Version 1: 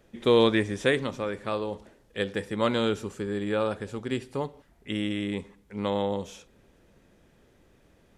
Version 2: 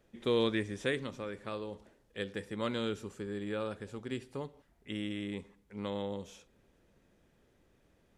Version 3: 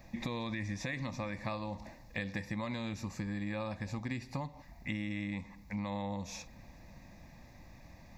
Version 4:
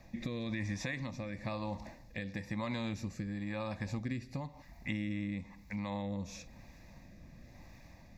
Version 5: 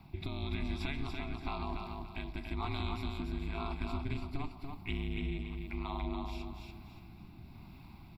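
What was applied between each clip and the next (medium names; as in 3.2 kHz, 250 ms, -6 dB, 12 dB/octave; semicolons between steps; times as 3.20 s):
dynamic bell 790 Hz, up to -5 dB, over -38 dBFS, Q 1.4; trim -8 dB
static phaser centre 2.1 kHz, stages 8; peak limiter -33 dBFS, peak gain reduction 9 dB; compression 6:1, threshold -52 dBFS, peak gain reduction 13 dB; trim +17 dB
rotary cabinet horn 1 Hz; trim +1.5 dB
ring modulator 140 Hz; static phaser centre 1.8 kHz, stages 6; feedback delay 287 ms, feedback 31%, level -4.5 dB; trim +6 dB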